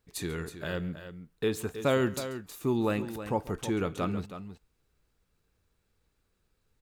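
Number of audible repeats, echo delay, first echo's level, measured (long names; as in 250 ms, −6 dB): 2, 138 ms, −19.5 dB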